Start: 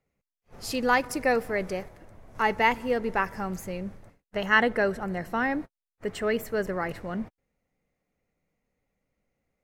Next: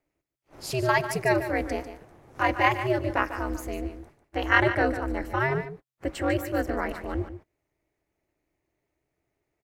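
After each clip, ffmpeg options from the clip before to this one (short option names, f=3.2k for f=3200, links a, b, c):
-af "lowshelf=f=120:t=q:w=1.5:g=-11.5,aeval=exprs='val(0)*sin(2*PI*130*n/s)':c=same,aecho=1:1:147:0.282,volume=3dB"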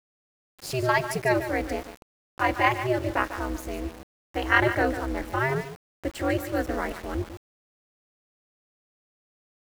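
-af "aeval=exprs='val(0)*gte(abs(val(0)),0.0126)':c=same"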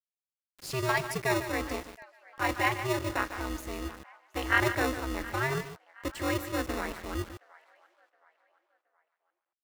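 -filter_complex "[0:a]acrossover=split=700[a][b];[a]acrusher=samples=28:mix=1:aa=0.000001[c];[b]asplit=2[d][e];[e]adelay=720,lowpass=f=3.1k:p=1,volume=-18dB,asplit=2[f][g];[g]adelay=720,lowpass=f=3.1k:p=1,volume=0.42,asplit=2[h][i];[i]adelay=720,lowpass=f=3.1k:p=1,volume=0.42[j];[d][f][h][j]amix=inputs=4:normalize=0[k];[c][k]amix=inputs=2:normalize=0,volume=-4dB"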